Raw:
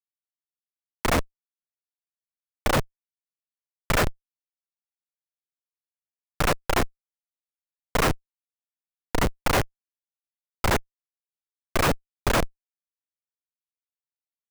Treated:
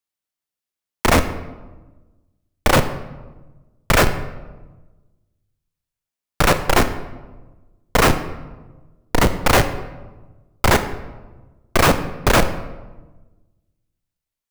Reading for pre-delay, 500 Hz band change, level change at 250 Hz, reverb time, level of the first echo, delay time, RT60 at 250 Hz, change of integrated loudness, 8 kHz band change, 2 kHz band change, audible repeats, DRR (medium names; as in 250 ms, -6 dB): 17 ms, +8.0 dB, +8.0 dB, 1.2 s, no echo, no echo, 1.5 s, +7.5 dB, +8.0 dB, +8.0 dB, no echo, 9.0 dB